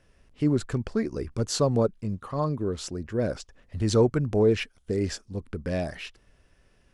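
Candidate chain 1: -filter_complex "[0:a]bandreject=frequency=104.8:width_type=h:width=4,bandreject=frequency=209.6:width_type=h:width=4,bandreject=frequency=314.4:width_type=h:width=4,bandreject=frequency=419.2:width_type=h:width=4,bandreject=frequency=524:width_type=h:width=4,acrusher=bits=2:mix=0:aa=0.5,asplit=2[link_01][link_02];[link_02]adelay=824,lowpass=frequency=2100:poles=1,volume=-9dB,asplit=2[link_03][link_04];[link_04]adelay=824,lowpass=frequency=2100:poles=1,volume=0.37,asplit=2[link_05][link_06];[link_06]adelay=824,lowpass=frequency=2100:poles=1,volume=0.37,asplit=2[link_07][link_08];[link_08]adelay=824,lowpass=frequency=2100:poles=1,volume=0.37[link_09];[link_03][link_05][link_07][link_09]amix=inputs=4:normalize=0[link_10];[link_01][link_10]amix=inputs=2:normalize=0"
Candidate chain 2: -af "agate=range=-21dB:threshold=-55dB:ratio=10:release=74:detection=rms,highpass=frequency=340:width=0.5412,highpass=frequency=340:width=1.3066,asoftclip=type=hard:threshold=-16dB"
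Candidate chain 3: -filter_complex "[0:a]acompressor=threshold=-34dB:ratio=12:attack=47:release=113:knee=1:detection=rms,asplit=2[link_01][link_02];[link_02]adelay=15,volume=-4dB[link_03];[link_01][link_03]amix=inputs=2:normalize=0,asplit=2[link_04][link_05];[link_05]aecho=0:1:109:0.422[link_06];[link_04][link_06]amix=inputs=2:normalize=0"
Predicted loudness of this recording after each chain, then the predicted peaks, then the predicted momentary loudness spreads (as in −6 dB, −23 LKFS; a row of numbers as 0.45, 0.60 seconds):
−29.0, −30.5, −35.5 LKFS; −9.5, −16.0, −16.5 dBFS; 19, 14, 5 LU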